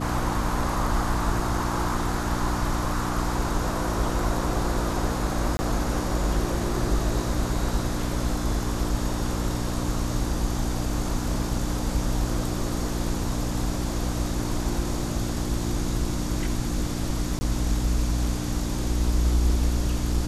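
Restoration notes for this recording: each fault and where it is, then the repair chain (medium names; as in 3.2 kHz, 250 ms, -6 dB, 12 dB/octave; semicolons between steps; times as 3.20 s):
hum 60 Hz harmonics 5 -30 dBFS
5.57–5.59 s: dropout 20 ms
17.39–17.41 s: dropout 20 ms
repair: de-hum 60 Hz, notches 5; interpolate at 5.57 s, 20 ms; interpolate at 17.39 s, 20 ms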